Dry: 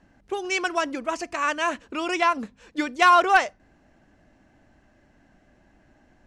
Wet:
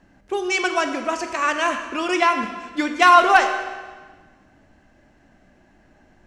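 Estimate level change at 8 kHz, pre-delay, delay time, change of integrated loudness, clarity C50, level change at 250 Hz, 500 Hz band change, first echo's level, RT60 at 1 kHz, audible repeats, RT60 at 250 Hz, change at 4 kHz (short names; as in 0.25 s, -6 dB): +4.0 dB, 16 ms, none, +4.0 dB, 7.5 dB, +4.5 dB, +4.0 dB, none, 1.4 s, none, 1.4 s, +4.0 dB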